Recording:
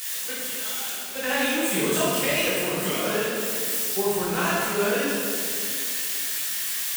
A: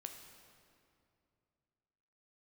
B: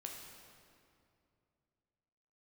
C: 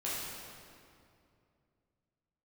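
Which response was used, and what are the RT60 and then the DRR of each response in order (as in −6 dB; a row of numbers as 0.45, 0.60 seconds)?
C; 2.5, 2.5, 2.5 seconds; 4.0, 0.0, −9.0 decibels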